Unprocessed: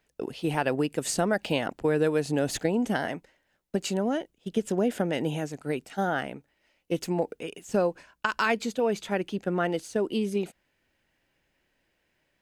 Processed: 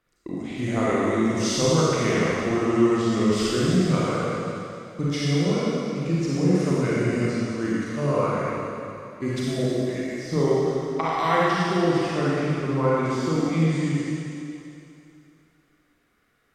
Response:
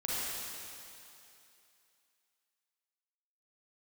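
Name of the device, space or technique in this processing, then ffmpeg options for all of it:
slowed and reverbed: -filter_complex "[0:a]asetrate=33075,aresample=44100[s0];[1:a]atrim=start_sample=2205[s1];[s0][s1]afir=irnorm=-1:irlink=0"

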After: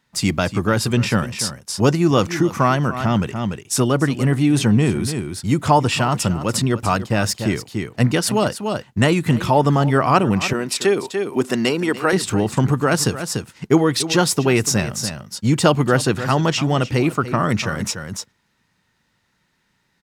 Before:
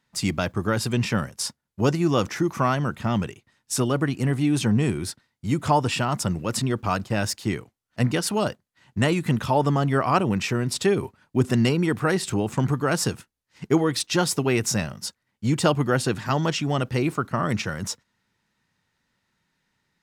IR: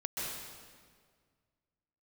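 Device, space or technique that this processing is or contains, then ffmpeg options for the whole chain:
ducked delay: -filter_complex "[0:a]asplit=3[s0][s1][s2];[s1]adelay=292,volume=0.596[s3];[s2]apad=whole_len=895896[s4];[s3][s4]sidechaincompress=threshold=0.0224:ratio=8:attack=34:release=224[s5];[s0][s5]amix=inputs=2:normalize=0,asettb=1/sr,asplit=3[s6][s7][s8];[s6]atrim=end=10.534[s9];[s7]atrim=start=10.53:end=12.13,asetpts=PTS-STARTPTS,afade=t=in:d=0.004:c=qsin,afade=t=out:st=1.596:d=0.004:c=qsin,highpass=290[s10];[s8]atrim=start=12.126[s11];[s9][s10]acrossfade=d=0.004:c1=hsin:c2=qsin[s12];[s12][s11]acrossfade=d=0.004:c1=qsin:c2=hsin,volume=1.88"

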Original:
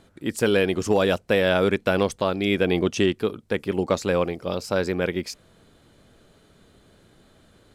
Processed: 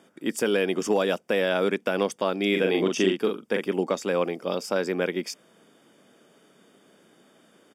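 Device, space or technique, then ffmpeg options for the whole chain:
PA system with an anti-feedback notch: -filter_complex "[0:a]highpass=f=190:w=0.5412,highpass=f=190:w=1.3066,asuperstop=centerf=4100:order=12:qfactor=7.4,alimiter=limit=0.237:level=0:latency=1:release=257,asplit=3[s0][s1][s2];[s0]afade=t=out:st=2.53:d=0.02[s3];[s1]asplit=2[s4][s5];[s5]adelay=42,volume=0.631[s6];[s4][s6]amix=inputs=2:normalize=0,afade=t=in:st=2.53:d=0.02,afade=t=out:st=3.65:d=0.02[s7];[s2]afade=t=in:st=3.65:d=0.02[s8];[s3][s7][s8]amix=inputs=3:normalize=0"

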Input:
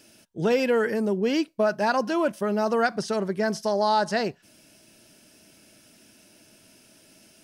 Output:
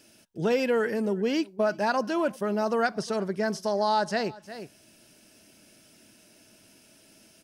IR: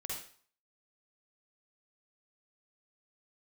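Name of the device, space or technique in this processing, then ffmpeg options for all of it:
ducked delay: -filter_complex "[0:a]asplit=3[s0][s1][s2];[s1]adelay=356,volume=0.473[s3];[s2]apad=whole_len=343725[s4];[s3][s4]sidechaincompress=threshold=0.00501:ratio=3:attack=6:release=276[s5];[s0][s5]amix=inputs=2:normalize=0,volume=0.75"

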